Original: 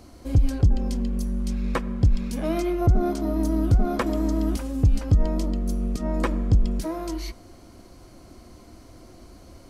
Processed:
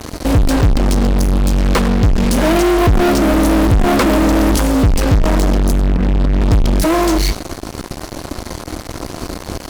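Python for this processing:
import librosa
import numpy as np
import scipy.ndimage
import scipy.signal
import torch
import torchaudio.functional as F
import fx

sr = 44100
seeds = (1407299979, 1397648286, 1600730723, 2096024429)

p1 = fx.cheby2_lowpass(x, sr, hz=1400.0, order=4, stop_db=80, at=(5.72, 6.41))
p2 = fx.comb_fb(p1, sr, f0_hz=150.0, decay_s=0.38, harmonics='all', damping=0.0, mix_pct=50)
p3 = p2 + 10.0 ** (-21.0 / 20.0) * np.pad(p2, (int(101 * sr / 1000.0), 0))[:len(p2)]
p4 = fx.fuzz(p3, sr, gain_db=47.0, gate_db=-50.0)
p5 = p3 + (p4 * 10.0 ** (-3.5 / 20.0))
y = p5 * 10.0 ** (4.0 / 20.0)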